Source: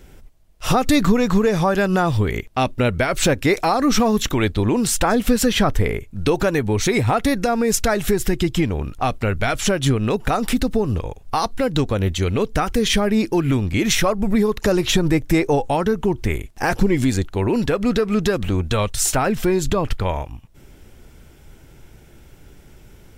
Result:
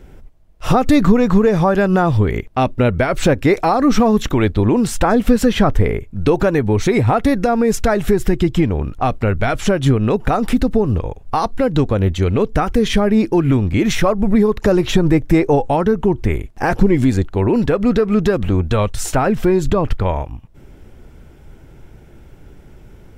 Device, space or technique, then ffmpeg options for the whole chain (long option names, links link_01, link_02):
through cloth: -af "highshelf=frequency=2400:gain=-11.5,volume=4.5dB"